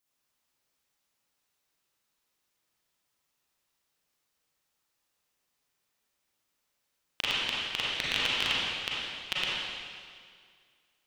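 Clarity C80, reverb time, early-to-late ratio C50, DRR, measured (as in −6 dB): −1.5 dB, 2.0 s, −5.0 dB, −7.5 dB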